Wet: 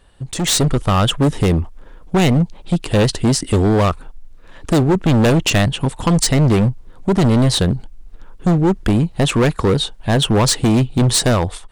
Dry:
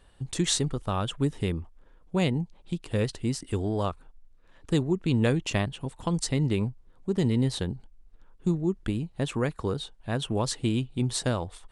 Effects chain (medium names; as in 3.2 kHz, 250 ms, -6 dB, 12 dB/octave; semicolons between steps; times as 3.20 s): hard clipper -27.5 dBFS, distortion -7 dB; level rider gain up to 11 dB; trim +6 dB